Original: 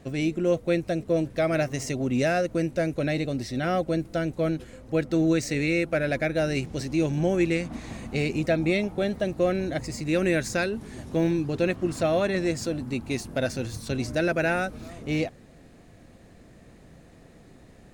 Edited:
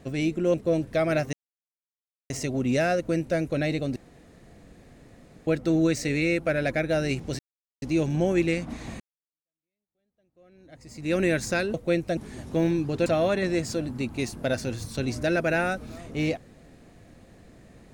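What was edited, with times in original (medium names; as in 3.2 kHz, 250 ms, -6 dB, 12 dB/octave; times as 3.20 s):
0.54–0.97 s: move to 10.77 s
1.76 s: insert silence 0.97 s
3.42–4.93 s: room tone
6.85 s: insert silence 0.43 s
8.03–10.18 s: fade in exponential
11.66–11.98 s: delete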